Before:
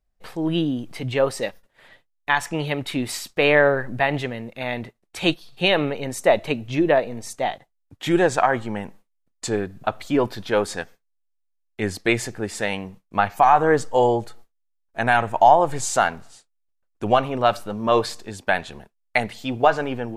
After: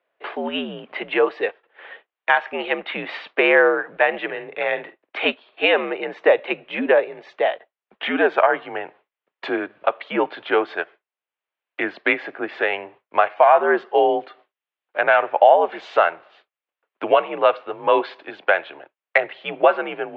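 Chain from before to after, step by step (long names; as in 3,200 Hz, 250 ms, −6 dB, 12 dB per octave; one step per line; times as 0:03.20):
0:04.24–0:05.30: double-tracking delay 49 ms −12 dB
single-sideband voice off tune −79 Hz 490–3,200 Hz
multiband upward and downward compressor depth 40%
level +4 dB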